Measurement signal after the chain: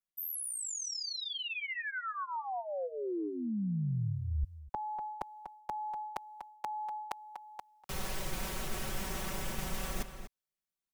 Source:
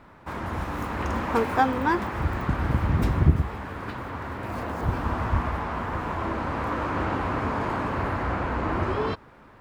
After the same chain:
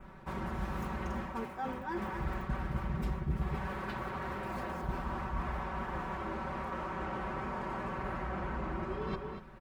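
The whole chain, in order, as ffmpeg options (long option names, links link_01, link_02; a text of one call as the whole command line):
ffmpeg -i in.wav -filter_complex "[0:a]aecho=1:1:5.3:0.86,adynamicequalizer=threshold=0.00447:dfrequency=4200:dqfactor=3:tfrequency=4200:tqfactor=3:attack=5:release=100:ratio=0.375:range=2:mode=cutabove:tftype=bell,acrossover=split=360[link_01][link_02];[link_02]dynaudnorm=framelen=140:gausssize=21:maxgain=5dB[link_03];[link_01][link_03]amix=inputs=2:normalize=0,asplit=2[link_04][link_05];[link_05]adelay=244.9,volume=-13dB,highshelf=frequency=4000:gain=-5.51[link_06];[link_04][link_06]amix=inputs=2:normalize=0,areverse,acompressor=threshold=-30dB:ratio=12,areverse,lowshelf=frequency=180:gain=9,volume=-6dB" out.wav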